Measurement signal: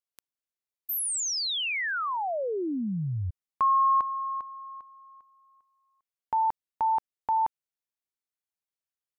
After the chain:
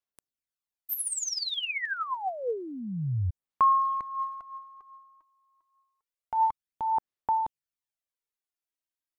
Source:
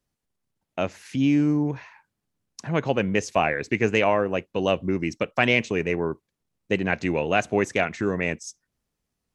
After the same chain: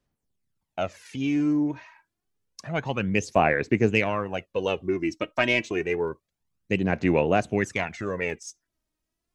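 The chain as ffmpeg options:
-af "aeval=exprs='0.596*(cos(1*acos(clip(val(0)/0.596,-1,1)))-cos(1*PI/2))+0.0299*(cos(3*acos(clip(val(0)/0.596,-1,1)))-cos(3*PI/2))':c=same,aphaser=in_gain=1:out_gain=1:delay=3.2:decay=0.59:speed=0.28:type=sinusoidal,volume=0.708"

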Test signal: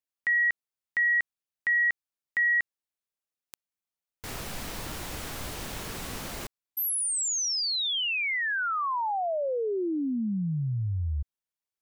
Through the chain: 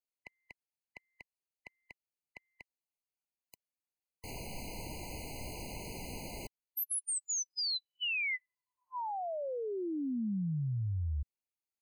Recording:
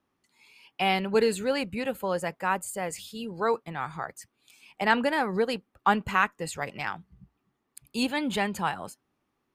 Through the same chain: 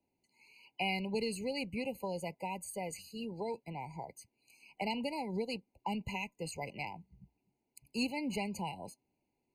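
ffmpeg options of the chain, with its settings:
-filter_complex "[0:a]acrossover=split=220|2000[s0][s1][s2];[s1]acompressor=threshold=0.0282:ratio=6:release=474:knee=2.83:detection=peak[s3];[s0][s3][s2]amix=inputs=3:normalize=0,afftfilt=real='re*eq(mod(floor(b*sr/1024/1000),2),0)':imag='im*eq(mod(floor(b*sr/1024/1000),2),0)':win_size=1024:overlap=0.75,volume=0.562"

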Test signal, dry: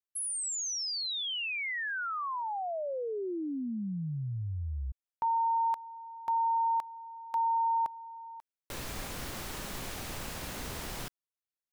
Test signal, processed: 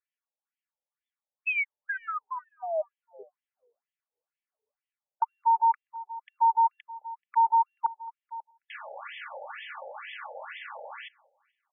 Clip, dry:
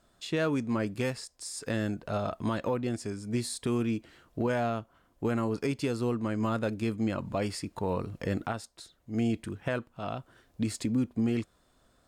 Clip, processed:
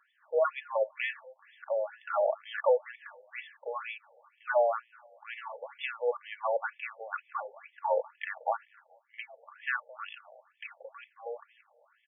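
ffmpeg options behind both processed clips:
-af "highshelf=f=6600:g=9,bandreject=f=420:w=12,acontrast=83,equalizer=f=4200:w=1.2:g=-5.5,aecho=1:1:3.5:0.51,aecho=1:1:216|432|648:0.0631|0.0265|0.0111,afftfilt=real='re*between(b*sr/1024,600*pow(2500/600,0.5+0.5*sin(2*PI*2.1*pts/sr))/1.41,600*pow(2500/600,0.5+0.5*sin(2*PI*2.1*pts/sr))*1.41)':imag='im*between(b*sr/1024,600*pow(2500/600,0.5+0.5*sin(2*PI*2.1*pts/sr))/1.41,600*pow(2500/600,0.5+0.5*sin(2*PI*2.1*pts/sr))*1.41)':win_size=1024:overlap=0.75"

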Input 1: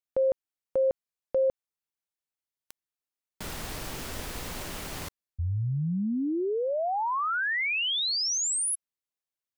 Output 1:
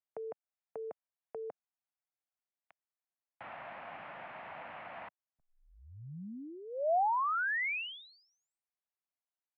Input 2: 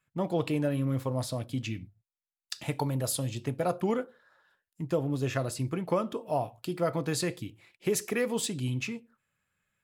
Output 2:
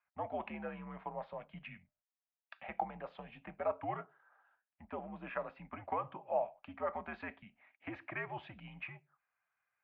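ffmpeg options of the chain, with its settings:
-af "highpass=f=230:t=q:w=0.5412,highpass=f=230:t=q:w=1.307,lowpass=f=2600:t=q:w=0.5176,lowpass=f=2600:t=q:w=0.7071,lowpass=f=2600:t=q:w=1.932,afreqshift=-86,lowshelf=f=530:t=q:w=3:g=-8,volume=0.531"

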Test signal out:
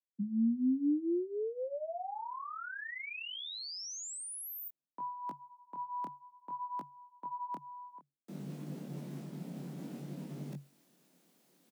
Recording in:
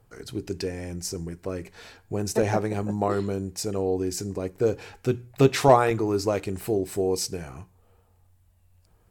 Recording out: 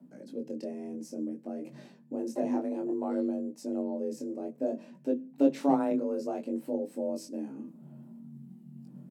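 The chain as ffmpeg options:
-af "firequalizer=gain_entry='entry(150,0);entry(280,-7);entry(1000,-19)':delay=0.05:min_phase=1,areverse,acompressor=mode=upward:threshold=0.0158:ratio=2.5,areverse,flanger=delay=18.5:depth=7.6:speed=0.58,afreqshift=140,volume=1.33"

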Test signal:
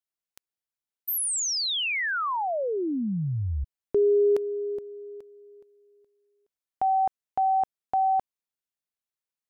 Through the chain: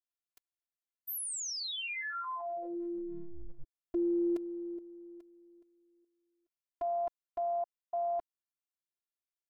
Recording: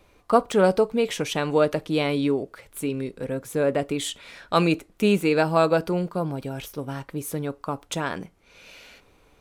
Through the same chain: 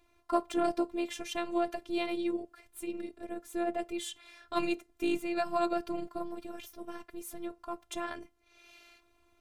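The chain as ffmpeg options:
-af "aeval=exprs='val(0)*sin(2*PI*77*n/s)':c=same,afftfilt=real='hypot(re,im)*cos(PI*b)':imag='0':win_size=512:overlap=0.75,volume=0.631"

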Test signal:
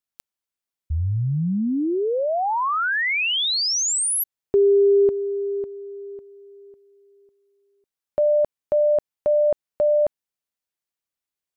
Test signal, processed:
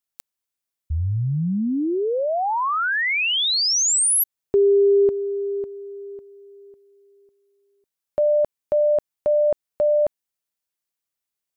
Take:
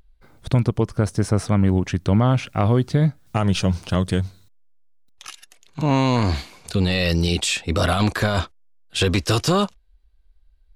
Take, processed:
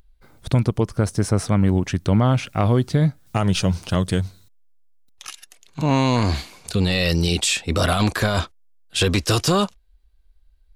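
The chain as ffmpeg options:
-af "highshelf=f=5800:g=5"

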